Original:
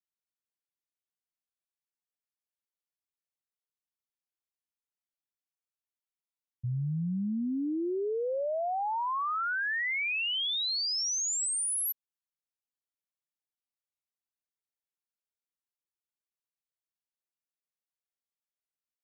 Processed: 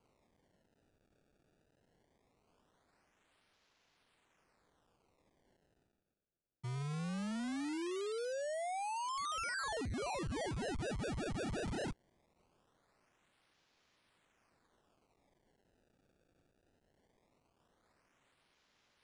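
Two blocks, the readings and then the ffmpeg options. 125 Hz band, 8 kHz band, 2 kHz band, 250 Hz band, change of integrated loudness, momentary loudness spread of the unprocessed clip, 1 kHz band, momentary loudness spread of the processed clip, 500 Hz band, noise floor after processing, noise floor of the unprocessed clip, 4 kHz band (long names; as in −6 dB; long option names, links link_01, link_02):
−5.5 dB, −18.0 dB, −12.0 dB, −6.5 dB, −10.0 dB, 5 LU, −7.0 dB, 3 LU, −5.5 dB, −79 dBFS, below −85 dBFS, −16.0 dB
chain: -af "highpass=frequency=110:width=0.5412,highpass=frequency=110:width=1.3066,areverse,acompressor=mode=upward:threshold=-55dB:ratio=2.5,areverse,acrusher=samples=24:mix=1:aa=0.000001:lfo=1:lforange=38.4:lforate=0.2,asoftclip=type=tanh:threshold=-36.5dB,aresample=22050,aresample=44100,volume=-1.5dB"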